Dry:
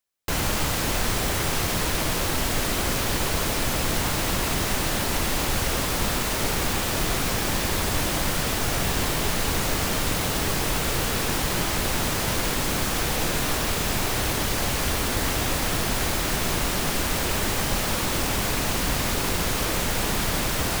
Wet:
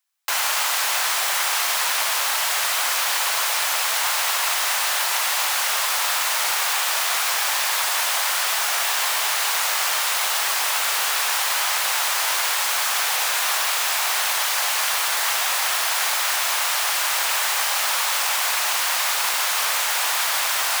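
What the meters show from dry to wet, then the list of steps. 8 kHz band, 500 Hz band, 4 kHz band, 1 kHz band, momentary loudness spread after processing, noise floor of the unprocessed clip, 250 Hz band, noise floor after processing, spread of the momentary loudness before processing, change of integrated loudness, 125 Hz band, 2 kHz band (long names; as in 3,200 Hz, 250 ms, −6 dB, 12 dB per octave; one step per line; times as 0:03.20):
+6.0 dB, −6.0 dB, +6.0 dB, +5.0 dB, 0 LU, −26 dBFS, below −25 dB, −23 dBFS, 0 LU, +4.5 dB, below −40 dB, +6.0 dB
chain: high-pass filter 790 Hz 24 dB per octave
level +6 dB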